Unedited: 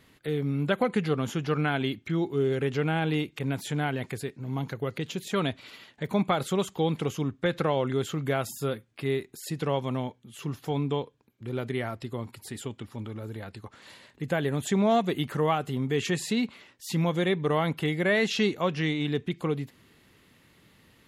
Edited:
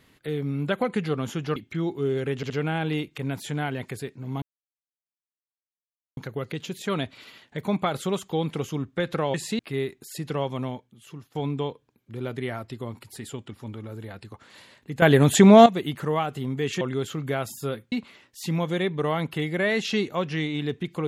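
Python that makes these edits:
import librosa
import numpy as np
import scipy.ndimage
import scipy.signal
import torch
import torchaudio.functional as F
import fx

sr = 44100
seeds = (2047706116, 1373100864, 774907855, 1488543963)

y = fx.edit(x, sr, fx.cut(start_s=1.56, length_s=0.35),
    fx.stutter(start_s=2.71, slice_s=0.07, count=3),
    fx.insert_silence(at_s=4.63, length_s=1.75),
    fx.swap(start_s=7.8, length_s=1.11, other_s=16.13, other_length_s=0.25),
    fx.fade_out_to(start_s=9.95, length_s=0.72, floor_db=-15.0),
    fx.clip_gain(start_s=14.34, length_s=0.64, db=11.5), tone=tone)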